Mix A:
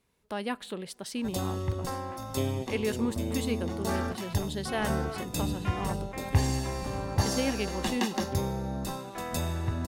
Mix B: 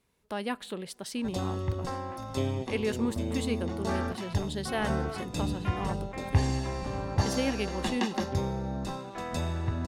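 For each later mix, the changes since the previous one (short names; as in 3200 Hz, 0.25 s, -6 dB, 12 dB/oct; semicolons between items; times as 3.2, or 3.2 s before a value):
background: add air absorption 68 m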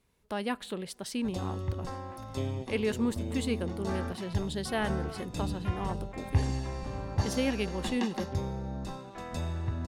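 background -5.0 dB; master: add low shelf 86 Hz +7 dB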